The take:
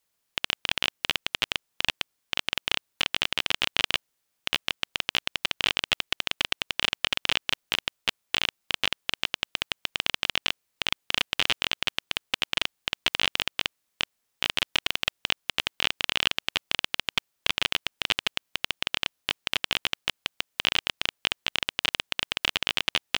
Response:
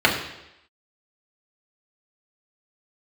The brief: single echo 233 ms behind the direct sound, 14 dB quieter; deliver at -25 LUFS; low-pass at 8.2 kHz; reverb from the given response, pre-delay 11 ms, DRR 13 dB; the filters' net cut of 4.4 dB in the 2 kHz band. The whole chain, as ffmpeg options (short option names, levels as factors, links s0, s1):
-filter_complex "[0:a]lowpass=8200,equalizer=f=2000:t=o:g=-6,aecho=1:1:233:0.2,asplit=2[s0][s1];[1:a]atrim=start_sample=2205,adelay=11[s2];[s1][s2]afir=irnorm=-1:irlink=0,volume=0.02[s3];[s0][s3]amix=inputs=2:normalize=0,volume=1.78"